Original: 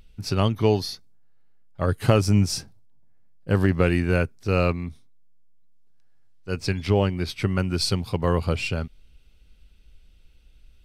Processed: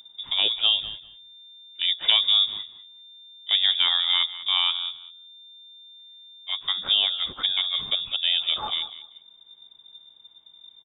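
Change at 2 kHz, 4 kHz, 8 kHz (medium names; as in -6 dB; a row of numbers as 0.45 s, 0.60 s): -1.5 dB, +15.5 dB, under -40 dB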